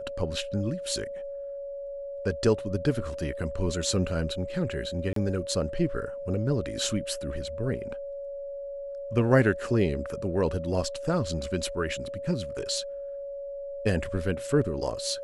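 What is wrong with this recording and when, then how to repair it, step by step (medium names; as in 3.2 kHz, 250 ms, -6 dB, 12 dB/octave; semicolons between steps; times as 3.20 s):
whine 560 Hz -34 dBFS
5.13–5.16 s: dropout 33 ms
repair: band-stop 560 Hz, Q 30; interpolate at 5.13 s, 33 ms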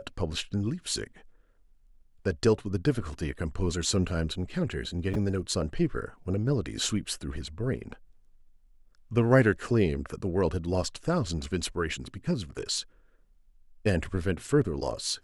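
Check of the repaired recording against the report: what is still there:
nothing left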